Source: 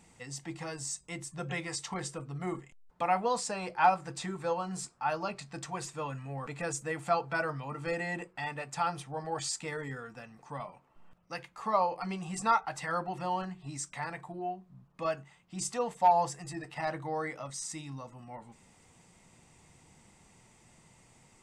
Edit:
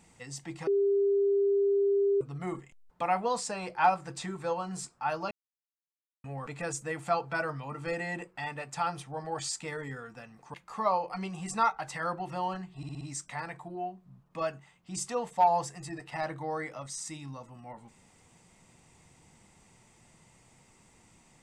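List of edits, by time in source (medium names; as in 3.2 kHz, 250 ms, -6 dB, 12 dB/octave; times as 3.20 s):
0.67–2.21 s: bleep 399 Hz -22.5 dBFS
5.31–6.24 s: mute
10.54–11.42 s: delete
13.65 s: stutter 0.06 s, 5 plays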